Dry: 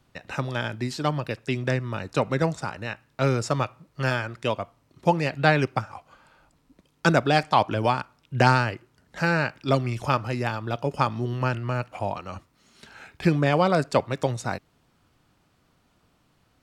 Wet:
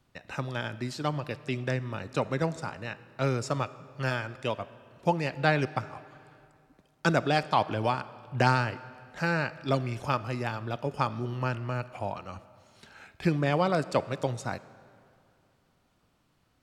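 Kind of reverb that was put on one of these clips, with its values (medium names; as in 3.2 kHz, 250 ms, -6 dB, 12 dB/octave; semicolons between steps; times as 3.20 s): algorithmic reverb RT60 2.5 s, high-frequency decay 0.75×, pre-delay 10 ms, DRR 16.5 dB; trim -5 dB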